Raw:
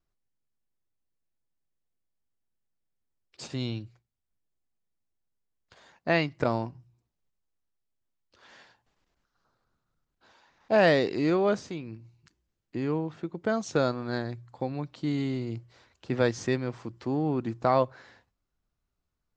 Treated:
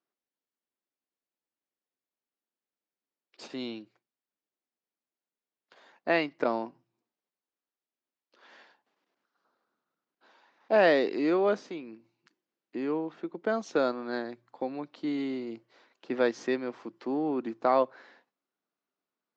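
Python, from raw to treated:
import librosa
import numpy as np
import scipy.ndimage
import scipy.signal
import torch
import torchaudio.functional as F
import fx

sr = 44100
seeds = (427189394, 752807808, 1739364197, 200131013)

y = scipy.signal.sosfilt(scipy.signal.butter(4, 240.0, 'highpass', fs=sr, output='sos'), x)
y = fx.air_absorb(y, sr, metres=120.0)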